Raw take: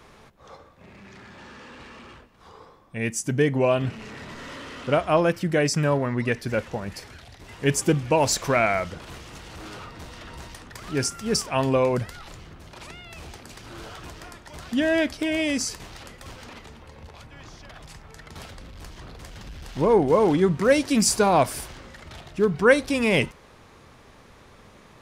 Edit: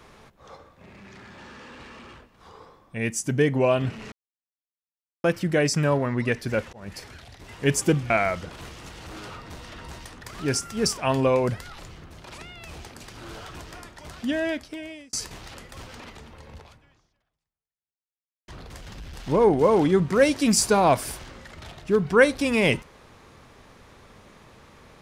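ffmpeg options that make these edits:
-filter_complex "[0:a]asplit=7[a][b][c][d][e][f][g];[a]atrim=end=4.12,asetpts=PTS-STARTPTS,afade=t=out:st=4.116:d=0.004:c=hsin[h];[b]atrim=start=4.12:end=5.24,asetpts=PTS-STARTPTS,volume=0[i];[c]atrim=start=5.24:end=6.73,asetpts=PTS-STARTPTS,afade=t=in:d=0.004:c=hsin,afade=t=out:st=1.486:d=0.004:c=hsin[j];[d]atrim=start=6.73:end=8.102,asetpts=PTS-STARTPTS,afade=t=in:d=0.34:c=qsin[k];[e]atrim=start=8.588:end=15.62,asetpts=PTS-STARTPTS,afade=t=out:st=5.832:d=1.2[l];[f]atrim=start=15.62:end=18.97,asetpts=PTS-STARTPTS,afade=t=in:d=0.004:c=hsin,afade=t=out:st=1.46:d=1.89:c=exp[m];[g]atrim=start=18.97,asetpts=PTS-STARTPTS,afade=t=in:d=0.004:c=hsin[n];[h][i][j][k]concat=n=4:v=0:a=1[o];[l][m][n]concat=n=3:v=0:a=1[p];[o][p]acrossfade=d=0.004:c1=hsin:c2=hsin"

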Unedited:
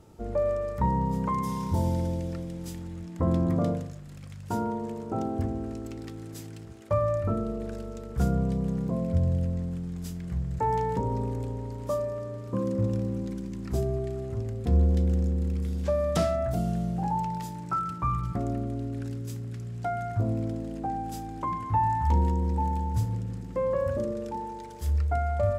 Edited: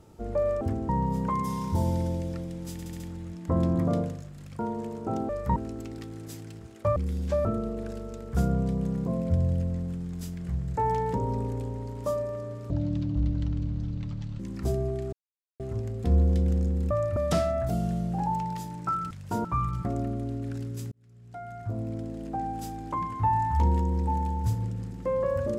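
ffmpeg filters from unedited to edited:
-filter_complex "[0:a]asplit=20[a][b][c][d][e][f][g][h][i][j][k][l][m][n][o][p][q][r][s][t];[a]atrim=end=0.612[u];[b]atrim=start=5.338:end=5.622[v];[c]atrim=start=0.878:end=2.782[w];[d]atrim=start=2.708:end=2.782[x];[e]atrim=start=2.708:end=2.782[y];[f]atrim=start=2.708:end=2.782[z];[g]atrim=start=2.708:end=4.302[aa];[h]atrim=start=4.638:end=5.342[ab];[i]atrim=start=0.608:end=0.882[ac];[j]atrim=start=5.618:end=7.022[ad];[k]atrim=start=15.518:end=16.012[ae];[l]atrim=start=7.278:end=12.534[af];[m]atrim=start=12.53:end=13.48,asetpts=PTS-STARTPTS,asetrate=24696,aresample=44100,atrim=end_sample=74812,asetpts=PTS-STARTPTS[ag];[n]atrim=start=13.476:end=14.21,asetpts=PTS-STARTPTS,afade=t=out:st=0.73:d=0.004:c=hsin,apad=pad_dur=0.47[ah];[o]atrim=start=14.21:end=15.522,asetpts=PTS-STARTPTS,afade=t=in:d=0.004:c=hsin[ai];[p]atrim=start=7.018:end=7.282[aj];[q]atrim=start=16.008:end=17.952[ak];[r]atrim=start=4.298:end=4.642[al];[s]atrim=start=17.948:end=19.42,asetpts=PTS-STARTPTS,afade=t=out:st=1.468:d=0.004:c=hsin[am];[t]atrim=start=19.42,asetpts=PTS-STARTPTS,afade=t=in:d=1.54[an];[u][v]acrossfade=d=0.004:c1=hsin:c2=hsin[ao];[ao][w]acrossfade=d=0.004:c1=hsin:c2=hsin[ap];[ap][x]acrossfade=d=0.004:c1=hsin:c2=hsin[aq];[aq][y]acrossfade=d=0.004:c1=hsin:c2=hsin[ar];[ar][z]acrossfade=d=0.004:c1=hsin:c2=hsin[as];[as][aa]acrossfade=d=0.004:c1=hsin:c2=hsin[at];[at][ab]acrossfade=d=0.004:c1=hsin:c2=hsin[au];[au][ac]acrossfade=d=0.004:c1=hsin:c2=hsin[av];[av][ad]acrossfade=d=0.004:c1=hsin:c2=hsin[aw];[aw][ae]acrossfade=d=0.004:c1=hsin:c2=hsin[ax];[ax][af]acrossfade=d=0.004:c1=hsin:c2=hsin[ay];[ay][ag]acrossfade=d=0.004:c1=hsin:c2=hsin[az];[ah][ai]concat=n=2:v=0:a=1[ba];[az][ba]acrossfade=d=0.004:c1=hsin:c2=hsin[bb];[bb][aj]acrossfade=d=0.004:c1=hsin:c2=hsin[bc];[bc][ak]acrossfade=d=0.004:c1=hsin:c2=hsin[bd];[bd][al]acrossfade=d=0.004:c1=hsin:c2=hsin[be];[am][an]concat=n=2:v=0:a=1[bf];[be][bf]acrossfade=d=0.004:c1=hsin:c2=hsin"

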